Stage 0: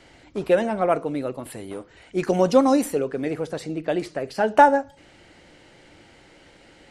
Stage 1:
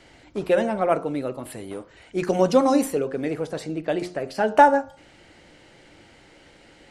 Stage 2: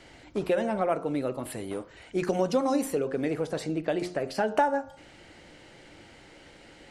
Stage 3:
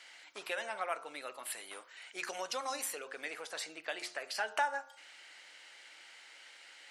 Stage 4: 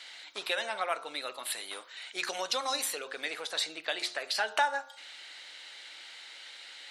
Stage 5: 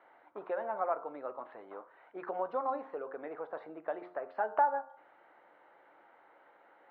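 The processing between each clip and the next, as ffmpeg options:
-af "bandreject=f=89.17:t=h:w=4,bandreject=f=178.34:t=h:w=4,bandreject=f=267.51:t=h:w=4,bandreject=f=356.68:t=h:w=4,bandreject=f=445.85:t=h:w=4,bandreject=f=535.02:t=h:w=4,bandreject=f=624.19:t=h:w=4,bandreject=f=713.36:t=h:w=4,bandreject=f=802.53:t=h:w=4,bandreject=f=891.7:t=h:w=4,bandreject=f=980.87:t=h:w=4,bandreject=f=1070.04:t=h:w=4,bandreject=f=1159.21:t=h:w=4,bandreject=f=1248.38:t=h:w=4,bandreject=f=1337.55:t=h:w=4,bandreject=f=1426.72:t=h:w=4,bandreject=f=1515.89:t=h:w=4,bandreject=f=1605.06:t=h:w=4"
-af "acompressor=threshold=0.0562:ratio=2.5"
-af "highpass=1400,volume=1.12"
-af "equalizer=f=3800:w=3.3:g=10.5,volume=1.68"
-af "lowpass=f=1100:w=0.5412,lowpass=f=1100:w=1.3066,volume=1.26"

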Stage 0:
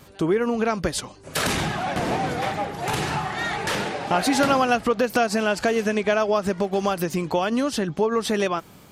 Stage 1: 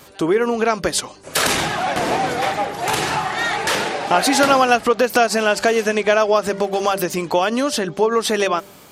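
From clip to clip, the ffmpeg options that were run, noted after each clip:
-af "bass=f=250:g=-9,treble=f=4000:g=2,bandreject=f=197.4:t=h:w=4,bandreject=f=394.8:t=h:w=4,bandreject=f=592.2:t=h:w=4,volume=2"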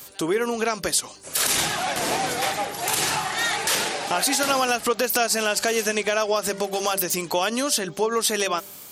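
-af "crystalizer=i=3.5:c=0,alimiter=limit=0.631:level=0:latency=1:release=81,volume=0.473"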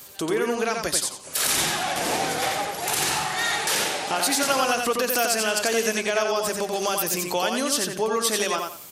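-af "aecho=1:1:88|176|264:0.631|0.158|0.0394,volume=0.794"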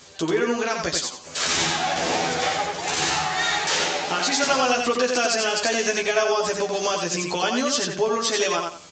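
-filter_complex "[0:a]asplit=2[s0][s1];[s1]adelay=12,volume=0.75[s2];[s0][s2]amix=inputs=2:normalize=0" -ar 16000 -c:a pcm_mulaw

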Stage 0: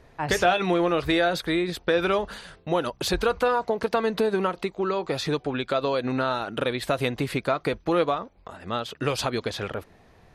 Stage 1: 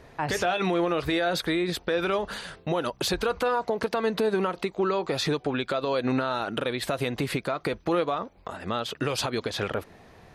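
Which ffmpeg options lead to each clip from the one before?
-filter_complex "[0:a]asplit=2[s0][s1];[s1]acompressor=threshold=0.0282:ratio=6,volume=0.708[s2];[s0][s2]amix=inputs=2:normalize=0,alimiter=limit=0.15:level=0:latency=1:release=114,lowshelf=f=61:g=-8"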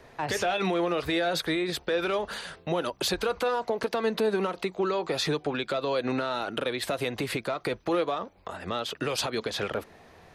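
-filter_complex "[0:a]acrossover=split=340|820|1800[s0][s1][s2][s3];[s0]flanger=delay=8:depth=6.3:regen=58:speed=0.26:shape=triangular[s4];[s2]asoftclip=type=tanh:threshold=0.0188[s5];[s4][s1][s5][s3]amix=inputs=4:normalize=0"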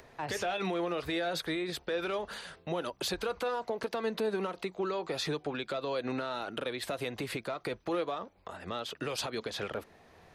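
-af "acompressor=mode=upward:threshold=0.00501:ratio=2.5,volume=0.501"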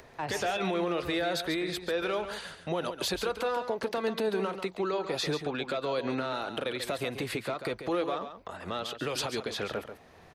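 -af "aecho=1:1:139:0.335,volume=1.33"

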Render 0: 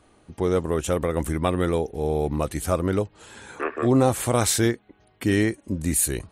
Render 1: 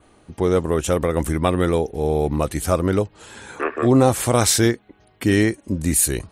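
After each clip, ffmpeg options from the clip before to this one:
-af "adynamicequalizer=threshold=0.00631:dfrequency=5300:dqfactor=3:tfrequency=5300:tqfactor=3:attack=5:release=100:ratio=0.375:range=2:mode=boostabove:tftype=bell,volume=1.58"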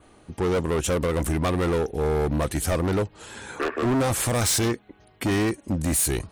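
-af "asoftclip=type=hard:threshold=0.1"

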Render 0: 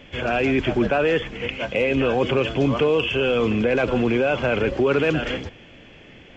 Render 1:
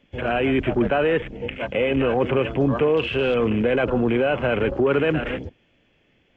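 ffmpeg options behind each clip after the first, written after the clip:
-filter_complex "[0:a]afwtdn=0.0316,acrossover=split=3100[s0][s1];[s1]acompressor=threshold=0.01:ratio=4:attack=1:release=60[s2];[s0][s2]amix=inputs=2:normalize=0"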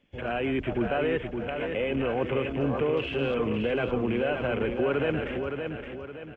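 -af "aecho=1:1:567|1134|1701|2268|2835:0.501|0.205|0.0842|0.0345|0.0142,volume=0.422"

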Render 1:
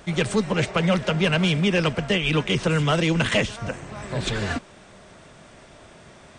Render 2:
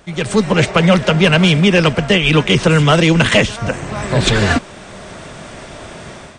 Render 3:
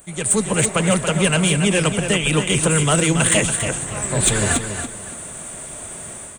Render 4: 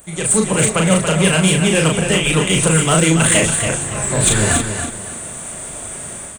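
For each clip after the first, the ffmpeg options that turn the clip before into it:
-af "dynaudnorm=f=120:g=5:m=5.62"
-filter_complex "[0:a]aexciter=amount=13.5:drive=8.7:freq=7900,asplit=2[s0][s1];[s1]aecho=0:1:281|562|843:0.398|0.107|0.029[s2];[s0][s2]amix=inputs=2:normalize=0,volume=0.447"
-filter_complex "[0:a]asplit=2[s0][s1];[s1]asoftclip=type=hard:threshold=0.126,volume=0.316[s2];[s0][s2]amix=inputs=2:normalize=0,asplit=2[s3][s4];[s4]adelay=37,volume=0.668[s5];[s3][s5]amix=inputs=2:normalize=0"

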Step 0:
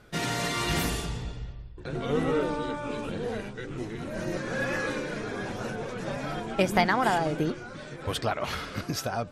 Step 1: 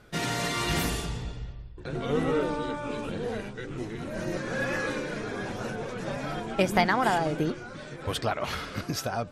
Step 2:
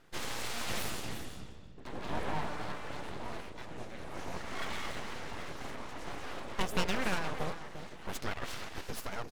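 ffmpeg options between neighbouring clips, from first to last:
-af anull
-af "aecho=1:1:351:0.316,aeval=exprs='abs(val(0))':c=same,volume=0.501"

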